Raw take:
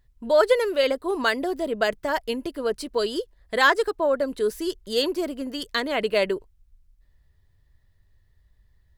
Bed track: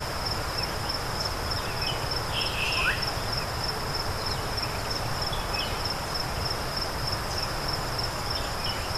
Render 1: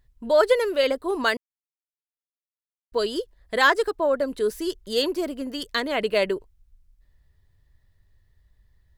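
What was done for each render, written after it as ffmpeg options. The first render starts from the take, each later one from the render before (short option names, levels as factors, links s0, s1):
-filter_complex "[0:a]asplit=3[s0][s1][s2];[s0]atrim=end=1.37,asetpts=PTS-STARTPTS,afade=t=out:st=1.366:d=0.004:c=hsin[s3];[s1]atrim=start=1.37:end=2.92,asetpts=PTS-STARTPTS,volume=0[s4];[s2]atrim=start=2.92,asetpts=PTS-STARTPTS,afade=t=in:d=0.004:c=hsin[s5];[s3][s4][s5]concat=n=3:v=0:a=1"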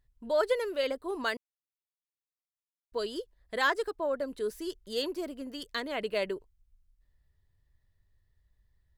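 -af "volume=0.355"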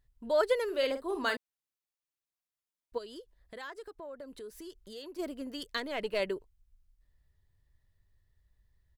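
-filter_complex "[0:a]asplit=3[s0][s1][s2];[s0]afade=t=out:st=0.68:d=0.02[s3];[s1]asplit=2[s4][s5];[s5]adelay=48,volume=0.355[s6];[s4][s6]amix=inputs=2:normalize=0,afade=t=in:st=0.68:d=0.02,afade=t=out:st=1.35:d=0.02[s7];[s2]afade=t=in:st=1.35:d=0.02[s8];[s3][s7][s8]amix=inputs=3:normalize=0,asplit=3[s9][s10][s11];[s9]afade=t=out:st=2.97:d=0.02[s12];[s10]acompressor=threshold=0.00501:ratio=3:attack=3.2:release=140:knee=1:detection=peak,afade=t=in:st=2.97:d=0.02,afade=t=out:st=5.18:d=0.02[s13];[s11]afade=t=in:st=5.18:d=0.02[s14];[s12][s13][s14]amix=inputs=3:normalize=0,asettb=1/sr,asplit=3[s15][s16][s17];[s15]atrim=end=5.774[s18];[s16]atrim=start=5.77:end=6.2,asetpts=PTS-STARTPTS,afade=t=in:d=0.004:c=qsin,afade=t=out:st=0.426:d=0.004:c=qsin,aeval=exprs='if(lt(val(0),0),0.708*val(0),val(0))':c=same[s19];[s17]atrim=start=6.196[s20];[s18][s19]acrossfade=d=0.004:c1=hsin:c2=qsin[s21];[s21][s20]acrossfade=d=0.004:c1=qsin:c2=hsin"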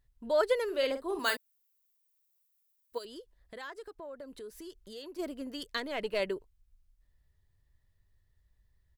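-filter_complex "[0:a]asettb=1/sr,asplit=3[s0][s1][s2];[s0]atrim=end=1.194[s3];[s1]atrim=start=1.19:end=3.05,asetpts=PTS-STARTPTS,afade=t=in:d=0.004:c=qsin,afade=t=out:st=1.856:d=0.004:c=qsin,aemphasis=mode=production:type=bsi[s4];[s2]atrim=start=3.046[s5];[s3][s4]acrossfade=d=0.004:c1=hsin:c2=qsin[s6];[s6][s5]acrossfade=d=0.004:c1=qsin:c2=hsin"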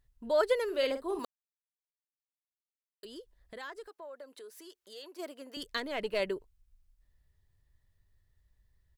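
-filter_complex "[0:a]asettb=1/sr,asplit=3[s0][s1][s2];[s0]atrim=end=3.874[s3];[s1]atrim=start=3.87:end=5.57,asetpts=PTS-STARTPTS,afade=t=in:d=0.004:c=qsin,afade=t=out:st=1.696:d=0.004:c=qsin,highpass=480[s4];[s2]atrim=start=5.566[s5];[s3][s4]acrossfade=d=0.004:c1=hsin:c2=qsin[s6];[s6][s5]acrossfade=d=0.004:c1=qsin:c2=hsin,asplit=3[s7][s8][s9];[s7]atrim=end=1.25,asetpts=PTS-STARTPTS,afade=t=out:st=1.246:d=0.004:c=hsin[s10];[s8]atrim=start=1.25:end=3.03,asetpts=PTS-STARTPTS,volume=0[s11];[s9]atrim=start=3.03,asetpts=PTS-STARTPTS,afade=t=in:d=0.004:c=hsin[s12];[s10][s11][s12]concat=n=3:v=0:a=1"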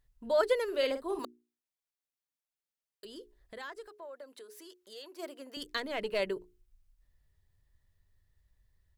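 -af "bandreject=f=60:t=h:w=6,bandreject=f=120:t=h:w=6,bandreject=f=180:t=h:w=6,bandreject=f=240:t=h:w=6,bandreject=f=300:t=h:w=6,bandreject=f=360:t=h:w=6,bandreject=f=420:t=h:w=6"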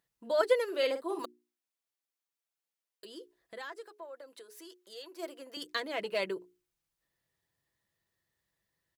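-af "highpass=220,aecho=1:1:6:0.38"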